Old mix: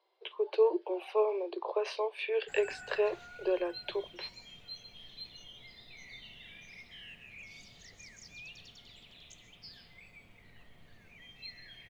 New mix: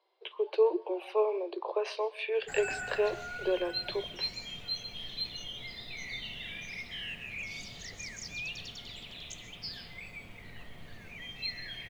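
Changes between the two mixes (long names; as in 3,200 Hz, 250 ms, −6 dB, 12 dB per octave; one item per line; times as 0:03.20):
speech: send on
background +10.0 dB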